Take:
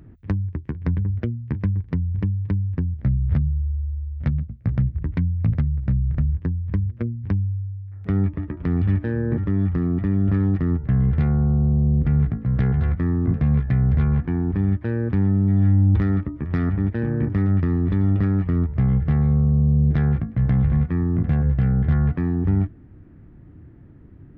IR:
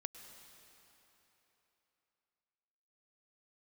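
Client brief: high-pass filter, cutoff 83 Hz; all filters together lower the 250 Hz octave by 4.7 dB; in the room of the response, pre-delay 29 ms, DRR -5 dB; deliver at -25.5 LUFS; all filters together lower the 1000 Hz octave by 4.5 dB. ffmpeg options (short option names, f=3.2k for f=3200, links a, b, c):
-filter_complex "[0:a]highpass=83,equalizer=f=250:t=o:g=-7,equalizer=f=1k:t=o:g=-6,asplit=2[a][b];[1:a]atrim=start_sample=2205,adelay=29[c];[b][c]afir=irnorm=-1:irlink=0,volume=8dB[d];[a][d]amix=inputs=2:normalize=0,volume=-7dB"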